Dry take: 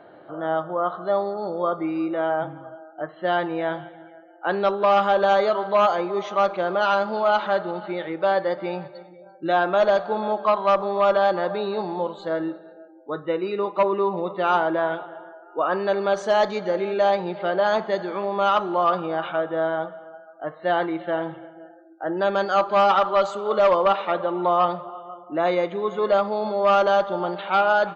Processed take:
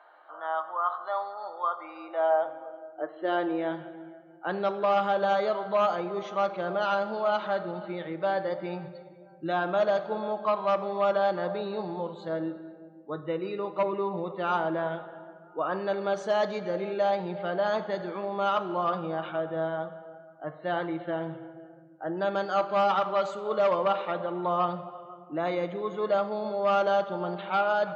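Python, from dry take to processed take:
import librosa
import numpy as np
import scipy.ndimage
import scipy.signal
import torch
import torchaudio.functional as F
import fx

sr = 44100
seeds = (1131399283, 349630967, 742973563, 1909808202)

y = fx.filter_sweep_highpass(x, sr, from_hz=1000.0, to_hz=120.0, start_s=1.78, end_s=4.57, q=2.4)
y = fx.room_shoebox(y, sr, seeds[0], volume_m3=2300.0, walls='mixed', distance_m=0.52)
y = y * 10.0 ** (-7.5 / 20.0)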